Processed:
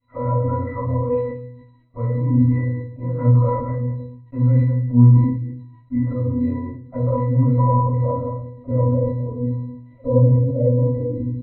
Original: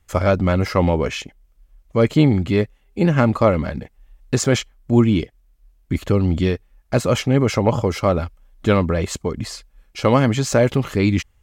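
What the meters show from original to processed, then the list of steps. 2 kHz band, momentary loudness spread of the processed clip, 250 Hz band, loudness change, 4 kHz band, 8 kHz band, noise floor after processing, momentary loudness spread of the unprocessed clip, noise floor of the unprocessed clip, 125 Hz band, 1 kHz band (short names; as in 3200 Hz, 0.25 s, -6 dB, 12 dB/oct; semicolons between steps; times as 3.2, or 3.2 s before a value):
under -15 dB, 13 LU, -2.5 dB, -0.5 dB, under -35 dB, under -40 dB, -48 dBFS, 11 LU, -58 dBFS, +4.0 dB, -2.0 dB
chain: reverse delay 0.115 s, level -12 dB; soft clip -6 dBFS, distortion -20 dB; bell 1600 Hz -2.5 dB 0.59 oct; low-pass sweep 1300 Hz -> 550 Hz, 6.61–10.22; doubler 22 ms -11.5 dB; compressor 2:1, threshold -20 dBFS, peak gain reduction 8 dB; low shelf 99 Hz -10 dB; crackle 57/s -38 dBFS; LPC vocoder at 8 kHz pitch kept; octave resonator B, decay 0.4 s; shoebox room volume 290 m³, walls furnished, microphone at 6.7 m; sustainer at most 64 dB/s; gain +4 dB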